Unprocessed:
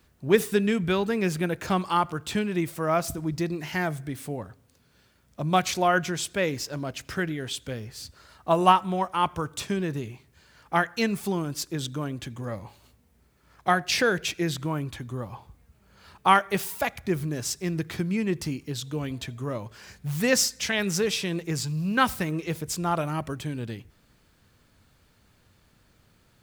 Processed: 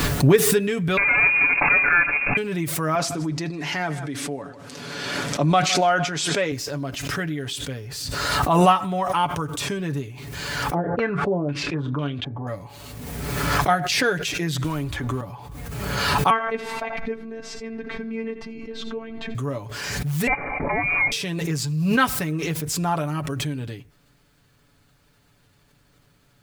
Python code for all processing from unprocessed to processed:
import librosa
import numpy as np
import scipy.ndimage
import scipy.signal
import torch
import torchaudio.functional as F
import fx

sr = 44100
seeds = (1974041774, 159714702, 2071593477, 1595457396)

y = fx.chain(x, sr, fx.halfwave_hold(),
    fx.notch(hz=700.0, q=5.4),
    fx.freq_invert(carrier_hz=2600), at=(0.97, 2.37))
y = fx.chain(y, sr, fx.bandpass_edges(low_hz=210.0, high_hz=7000.0),
    fx.echo_single(ms=155, db=-20.5),
    fx.sustainer(db_per_s=72.0), at=(2.95, 6.52))
y = fx.chain(y, sr, fx.doubler(ms=28.0, db=-12.0),
    fx.filter_held_lowpass(hz=4.0, low_hz=450.0, high_hz=3300.0), at=(10.74, 12.47))
y = fx.chain(y, sr, fx.law_mismatch(coded='mu'),
    fx.low_shelf_res(hz=100.0, db=8.5, q=3.0),
    fx.band_squash(depth_pct=100), at=(14.64, 15.21))
y = fx.chain(y, sr, fx.robotise(hz=225.0),
    fx.lowpass(hz=2100.0, slope=12),
    fx.echo_single(ms=83, db=-17.5), at=(16.3, 19.35))
y = fx.chain(y, sr, fx.highpass_res(hz=260.0, q=2.2),
    fx.tilt_eq(slope=2.5),
    fx.freq_invert(carrier_hz=2600), at=(20.27, 21.12))
y = y + 0.59 * np.pad(y, (int(7.0 * sr / 1000.0), 0))[:len(y)]
y = fx.pre_swell(y, sr, db_per_s=28.0)